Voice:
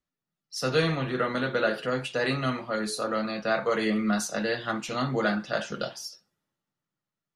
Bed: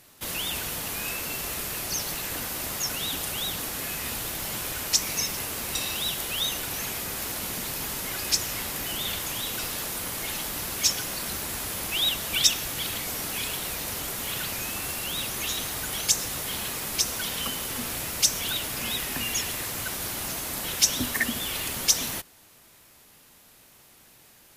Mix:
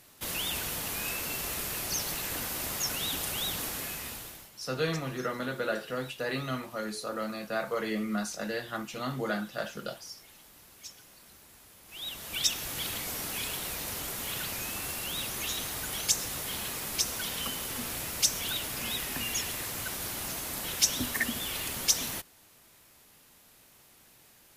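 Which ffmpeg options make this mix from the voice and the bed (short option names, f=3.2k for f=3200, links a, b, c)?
-filter_complex "[0:a]adelay=4050,volume=-6dB[a];[1:a]volume=16.5dB,afade=t=out:st=3.66:d=0.85:silence=0.0944061,afade=t=in:st=11.85:d=0.92:silence=0.112202[b];[a][b]amix=inputs=2:normalize=0"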